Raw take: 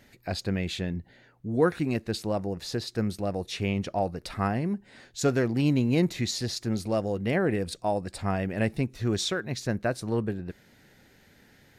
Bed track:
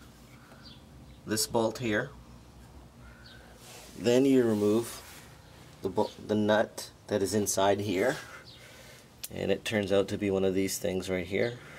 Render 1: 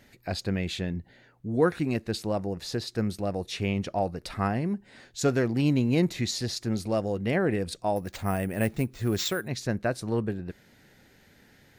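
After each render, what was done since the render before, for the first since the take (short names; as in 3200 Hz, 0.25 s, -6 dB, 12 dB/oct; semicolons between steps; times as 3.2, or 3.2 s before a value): 7.96–9.48 careless resampling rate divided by 4×, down none, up hold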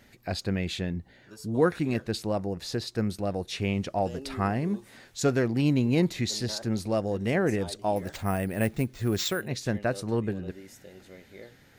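add bed track -18 dB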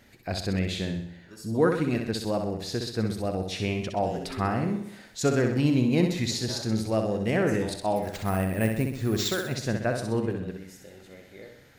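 flutter echo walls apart 10.9 m, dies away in 0.65 s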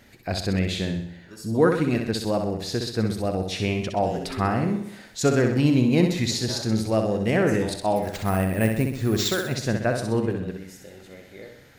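gain +3.5 dB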